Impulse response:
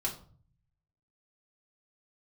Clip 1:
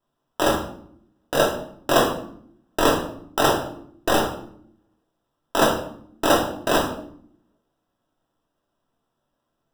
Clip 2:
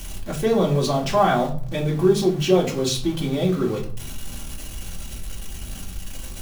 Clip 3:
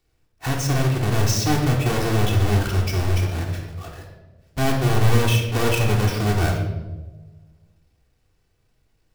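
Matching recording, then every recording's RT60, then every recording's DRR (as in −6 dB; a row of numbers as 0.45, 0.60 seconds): 2; 0.65, 0.45, 1.2 seconds; −2.0, −3.5, −1.0 decibels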